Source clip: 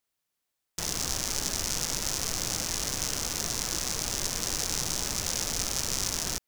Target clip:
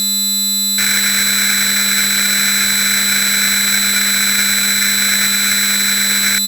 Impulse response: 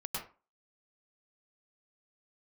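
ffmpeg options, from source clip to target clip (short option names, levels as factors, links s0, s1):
-af "alimiter=limit=0.141:level=0:latency=1:release=16,tiltshelf=f=830:g=-4,aeval=exprs='1.26*sin(PI/2*8.91*val(0)/1.26)':c=same,firequalizer=gain_entry='entry(430,0);entry(890,-28);entry(1500,-23)':delay=0.05:min_phase=1,aeval=exprs='val(0)+0.0794*sin(2*PI*5900*n/s)':c=same,highpass=f=280:p=1,aeval=exprs='val(0)*sgn(sin(2*PI*1900*n/s))':c=same,volume=2.82"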